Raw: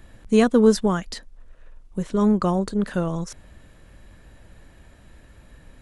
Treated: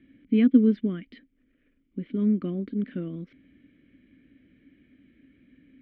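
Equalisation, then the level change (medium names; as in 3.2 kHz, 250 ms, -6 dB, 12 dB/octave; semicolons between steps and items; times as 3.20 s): vowel filter i; distance through air 380 m; peaking EQ 6.9 kHz -11.5 dB 0.72 oct; +8.5 dB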